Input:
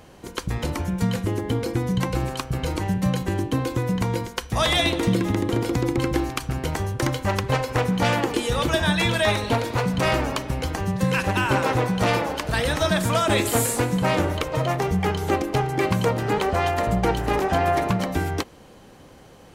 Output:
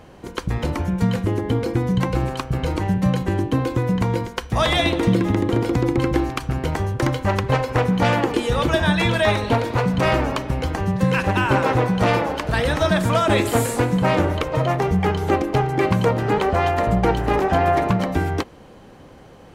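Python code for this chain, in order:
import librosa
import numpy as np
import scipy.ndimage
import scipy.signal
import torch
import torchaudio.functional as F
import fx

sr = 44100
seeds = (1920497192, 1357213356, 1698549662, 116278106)

y = fx.high_shelf(x, sr, hz=3900.0, db=-9.5)
y = y * librosa.db_to_amplitude(3.5)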